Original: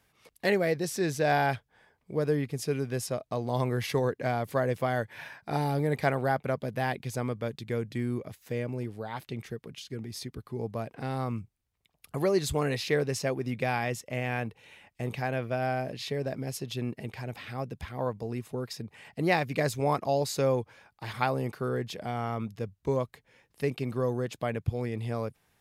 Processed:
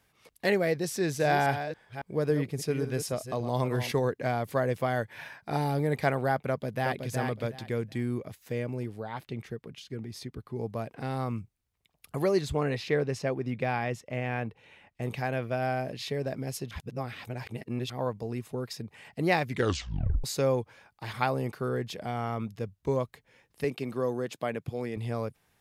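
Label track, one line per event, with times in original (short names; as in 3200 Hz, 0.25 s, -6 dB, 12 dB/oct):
0.910000	3.920000	reverse delay 0.277 s, level -9.5 dB
6.480000	7.090000	echo throw 0.37 s, feedback 20%, level -4.5 dB
9.000000	10.560000	high shelf 3900 Hz -6.5 dB
12.410000	15.020000	LPF 2700 Hz 6 dB/oct
16.710000	17.900000	reverse
19.460000	19.460000	tape stop 0.78 s
23.640000	24.970000	HPF 170 Hz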